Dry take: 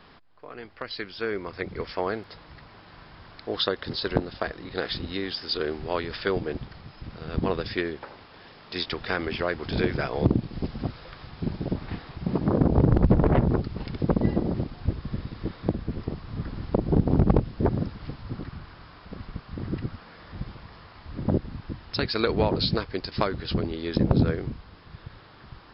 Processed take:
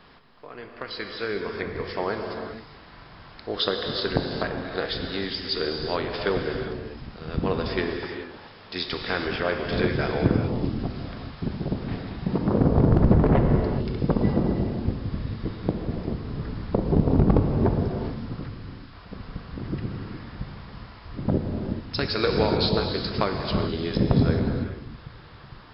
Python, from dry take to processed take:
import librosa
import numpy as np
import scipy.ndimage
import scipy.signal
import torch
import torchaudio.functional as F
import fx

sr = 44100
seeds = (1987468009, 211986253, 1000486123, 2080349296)

y = fx.spec_box(x, sr, start_s=13.43, length_s=0.44, low_hz=610.0, high_hz=2600.0, gain_db=-7)
y = fx.peak_eq(y, sr, hz=510.0, db=-9.5, octaves=2.9, at=(18.48, 18.93))
y = fx.rev_gated(y, sr, seeds[0], gate_ms=450, shape='flat', drr_db=2.5)